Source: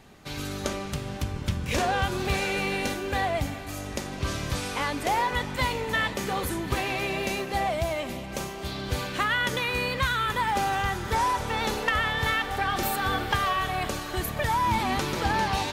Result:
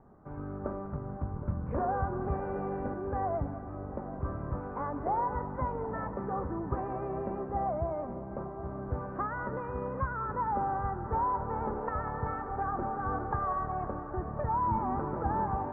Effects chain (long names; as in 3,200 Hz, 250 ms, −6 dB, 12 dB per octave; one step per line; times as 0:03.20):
Butterworth low-pass 1,300 Hz 36 dB per octave
on a send: echo with a time of its own for lows and highs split 660 Hz, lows 772 ms, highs 193 ms, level −14 dB
on the sum: level −4.5 dB